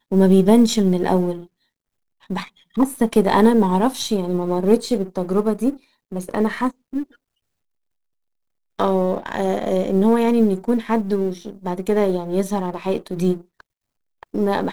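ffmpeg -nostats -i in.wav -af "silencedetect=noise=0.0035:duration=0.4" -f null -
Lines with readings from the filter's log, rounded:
silence_start: 1.47
silence_end: 2.21 | silence_duration: 0.74
silence_start: 7.16
silence_end: 8.79 | silence_duration: 1.63
silence_start: 13.61
silence_end: 14.23 | silence_duration: 0.62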